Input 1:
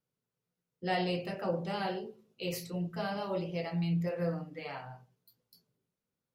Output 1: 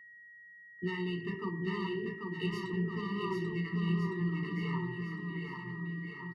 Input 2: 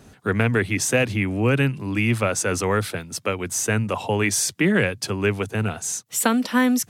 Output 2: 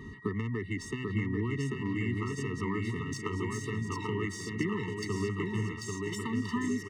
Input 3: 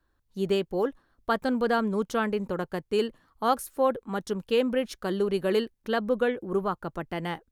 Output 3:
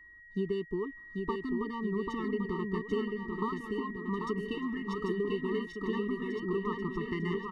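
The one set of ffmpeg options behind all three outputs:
ffmpeg -i in.wav -af "acompressor=threshold=-33dB:ratio=20,aeval=exprs='val(0)+0.002*sin(2*PI*1900*n/s)':channel_layout=same,adynamicsmooth=sensitivity=3.5:basefreq=3400,aecho=1:1:790|1462|2032|2517|2930:0.631|0.398|0.251|0.158|0.1,afftfilt=real='re*eq(mod(floor(b*sr/1024/440),2),0)':imag='im*eq(mod(floor(b*sr/1024/440),2),0)':win_size=1024:overlap=0.75,volume=4.5dB" out.wav

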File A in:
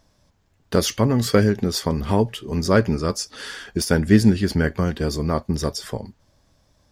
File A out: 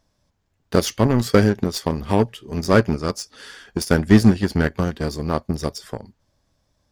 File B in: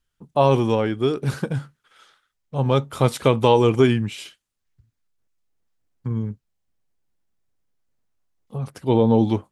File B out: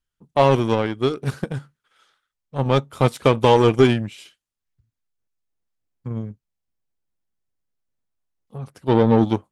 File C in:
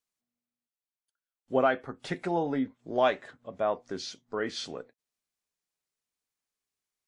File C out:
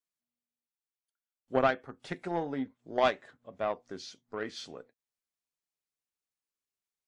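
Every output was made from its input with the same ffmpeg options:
ffmpeg -i in.wav -af "acontrast=53,aeval=exprs='1*(cos(1*acos(clip(val(0)/1,-1,1)))-cos(1*PI/2))+0.1*(cos(3*acos(clip(val(0)/1,-1,1)))-cos(3*PI/2))+0.0398*(cos(6*acos(clip(val(0)/1,-1,1)))-cos(6*PI/2))+0.0631*(cos(7*acos(clip(val(0)/1,-1,1)))-cos(7*PI/2))+0.0224*(cos(8*acos(clip(val(0)/1,-1,1)))-cos(8*PI/2))':channel_layout=same,volume=-1dB" out.wav

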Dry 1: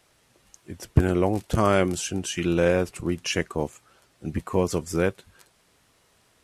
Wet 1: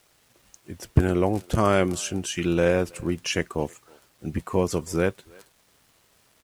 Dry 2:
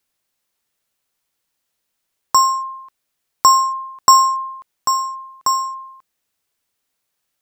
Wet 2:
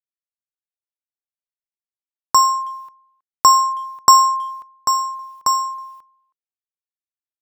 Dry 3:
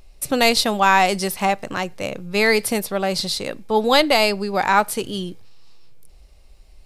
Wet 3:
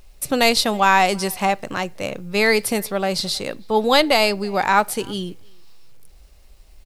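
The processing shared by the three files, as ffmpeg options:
ffmpeg -i in.wav -filter_complex "[0:a]acrusher=bits=9:mix=0:aa=0.000001,asplit=2[link_01][link_02];[link_02]adelay=320,highpass=300,lowpass=3400,asoftclip=type=hard:threshold=-9.5dB,volume=-26dB[link_03];[link_01][link_03]amix=inputs=2:normalize=0" out.wav

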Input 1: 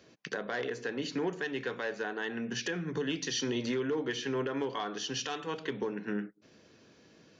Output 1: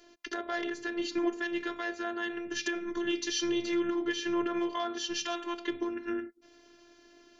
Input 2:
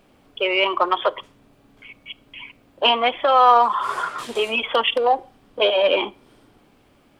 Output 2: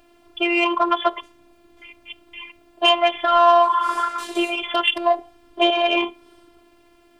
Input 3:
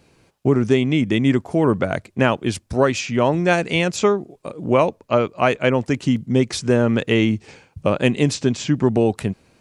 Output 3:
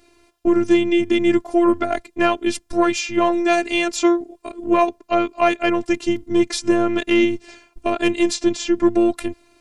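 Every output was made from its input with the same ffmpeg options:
ffmpeg -i in.wav -af "acontrast=24,afftfilt=real='hypot(re,im)*cos(PI*b)':imag='0':win_size=512:overlap=0.75" out.wav

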